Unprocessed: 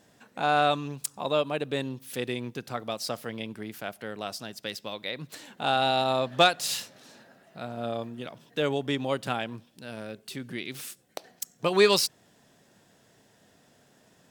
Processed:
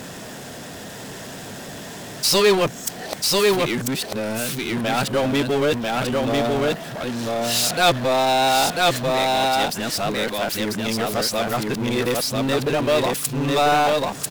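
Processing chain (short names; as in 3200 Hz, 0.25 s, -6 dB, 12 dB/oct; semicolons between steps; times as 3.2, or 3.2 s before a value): whole clip reversed; echo 0.993 s -3.5 dB; power-law curve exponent 0.5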